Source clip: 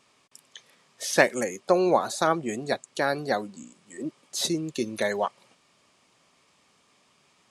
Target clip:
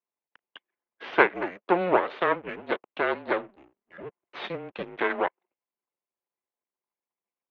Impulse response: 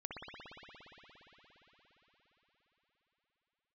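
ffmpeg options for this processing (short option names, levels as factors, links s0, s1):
-af "anlmdn=0.0158,aeval=exprs='max(val(0),0)':c=same,highpass=f=550:t=q:w=0.5412,highpass=f=550:t=q:w=1.307,lowpass=f=3100:t=q:w=0.5176,lowpass=f=3100:t=q:w=0.7071,lowpass=f=3100:t=q:w=1.932,afreqshift=-180,volume=2.11"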